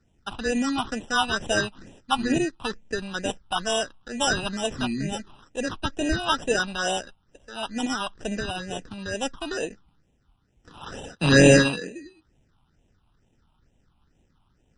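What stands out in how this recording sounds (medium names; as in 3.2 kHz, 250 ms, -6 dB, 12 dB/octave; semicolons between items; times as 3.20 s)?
aliases and images of a low sample rate 2.2 kHz, jitter 0%; phasing stages 6, 2.2 Hz, lowest notch 470–1300 Hz; MP3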